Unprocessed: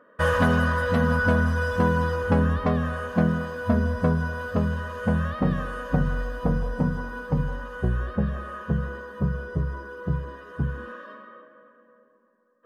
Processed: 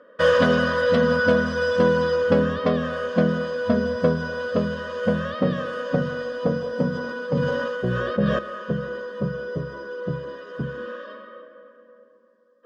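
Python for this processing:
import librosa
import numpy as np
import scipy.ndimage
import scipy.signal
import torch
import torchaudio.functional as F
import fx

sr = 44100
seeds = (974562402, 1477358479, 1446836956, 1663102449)

y = fx.cabinet(x, sr, low_hz=120.0, low_slope=24, high_hz=7400.0, hz=(150.0, 530.0, 840.0, 3300.0, 4900.0), db=(-5, 9, -9, 8, 8))
y = fx.sustainer(y, sr, db_per_s=21.0, at=(6.9, 8.39))
y = F.gain(torch.from_numpy(y), 2.0).numpy()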